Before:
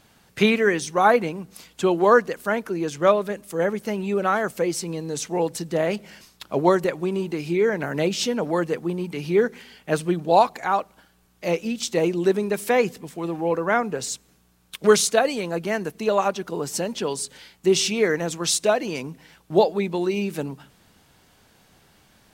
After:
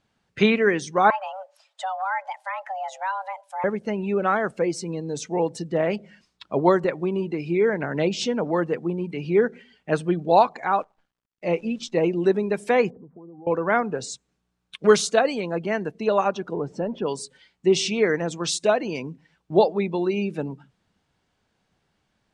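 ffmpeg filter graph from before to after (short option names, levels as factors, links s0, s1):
-filter_complex "[0:a]asettb=1/sr,asplit=3[s0][s1][s2];[s0]atrim=end=1.104[s3];[s1]atrim=start=1.1:end=3.64,asetpts=PTS-STARTPTS,afade=t=in:d=0.004:c=qsin,afade=t=out:st=2.536:d=0.004:c=qsin,acompressor=threshold=0.0447:ratio=2.5:attack=3.2:release=140:knee=1:detection=peak,highpass=220,afreqshift=380[s4];[s2]atrim=start=3.636[s5];[s3][s4]acrossfade=d=0.004:c1=hsin:c2=qsin[s6];[s6][s5]acrossfade=d=0.004:c1=qsin:c2=hsin,asettb=1/sr,asplit=3[s7][s8][s9];[s7]atrim=end=10.774[s10];[s8]atrim=start=10.77:end=12.04,asetpts=PTS-STARTPTS,afade=t=in:d=0.004:c=qsin,afade=t=out:st=1.266:d=0.004:c=qsin,agate=range=0.0224:threshold=0.00178:ratio=3:release=100:detection=peak,highshelf=f=6000:g=-9,acrusher=bits=8:dc=4:mix=0:aa=0.000001[s11];[s9]atrim=start=12.036[s12];[s10][s11]acrossfade=d=0.004:c1=hsin:c2=qsin[s13];[s13][s12]acrossfade=d=0.004:c1=qsin:c2=hsin,asettb=1/sr,asplit=3[s14][s15][s16];[s14]atrim=end=12.904[s17];[s15]atrim=start=12.9:end=13.47,asetpts=PTS-STARTPTS,afade=t=in:d=0.004:c=qsin,afade=t=out:st=0.566:d=0.004:c=qsin,lowpass=f=1100:w=0.5412,lowpass=f=1100:w=1.3066,acompressor=threshold=0.0112:ratio=16:attack=3.2:release=140:knee=1:detection=peak[s18];[s16]atrim=start=13.466[s19];[s17][s18]acrossfade=d=0.004:c1=hsin:c2=qsin[s20];[s20][s19]acrossfade=d=0.004:c1=qsin:c2=hsin,asettb=1/sr,asplit=3[s21][s22][s23];[s21]atrim=end=16.534[s24];[s22]atrim=start=16.53:end=17.06,asetpts=PTS-STARTPTS,afade=t=in:d=0.004:c=qsin,afade=t=out:st=0.526:d=0.004:c=qsin,aeval=exprs='val(0)+0.5*0.0126*sgn(val(0))':c=same,lowpass=f=2700:p=1,highshelf=f=2000:g=-8.5[s25];[s23]atrim=start=17.056[s26];[s24][s25]acrossfade=d=0.004:c1=hsin:c2=qsin[s27];[s27][s26]acrossfade=d=0.004:c1=qsin:c2=hsin,afftdn=nr=14:nf=-40,lowpass=f=9400:w=0.5412,lowpass=f=9400:w=1.3066,highshelf=f=7100:g=-10"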